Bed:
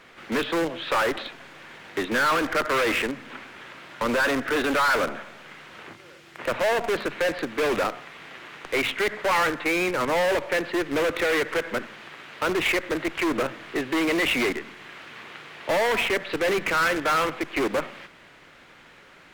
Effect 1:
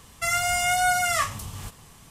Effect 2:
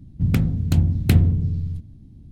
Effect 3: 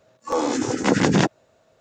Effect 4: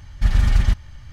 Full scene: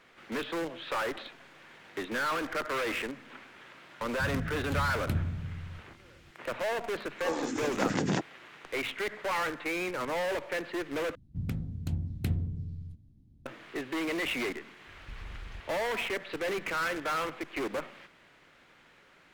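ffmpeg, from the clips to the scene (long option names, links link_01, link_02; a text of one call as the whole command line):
ffmpeg -i bed.wav -i cue0.wav -i cue1.wav -i cue2.wav -i cue3.wav -filter_complex "[2:a]asplit=2[link_01][link_02];[0:a]volume=-9dB[link_03];[4:a]acompressor=threshold=-23dB:ratio=6:attack=3.2:release=140:knee=1:detection=peak[link_04];[link_03]asplit=2[link_05][link_06];[link_05]atrim=end=11.154[link_07];[link_02]atrim=end=2.31,asetpts=PTS-STARTPTS,volume=-15dB[link_08];[link_06]atrim=start=13.456[link_09];[link_01]atrim=end=2.31,asetpts=PTS-STARTPTS,volume=-15.5dB,afade=type=in:duration=0.004:curve=hsin,afade=type=out:start_time=2.306:duration=0.004:curve=hsin,adelay=4000[link_10];[3:a]atrim=end=1.8,asetpts=PTS-STARTPTS,volume=-11.5dB,afade=type=in:duration=0.004:curve=hsin,afade=type=out:start_time=1.796:duration=0.004:curve=hsin,adelay=6940[link_11];[link_04]atrim=end=1.12,asetpts=PTS-STARTPTS,volume=-17dB,afade=type=in:duration=0.004:curve=hsin,afade=type=out:start_time=1.116:duration=0.004:curve=hsin,adelay=14870[link_12];[link_07][link_08]acrossfade=duration=0.004:curve1=hsin:curve2=hsin[link_13];[link_13][link_09]acrossfade=duration=0.004:curve1=hsin:curve2=hsin[link_14];[link_14][link_10][link_11][link_12]amix=inputs=4:normalize=0" out.wav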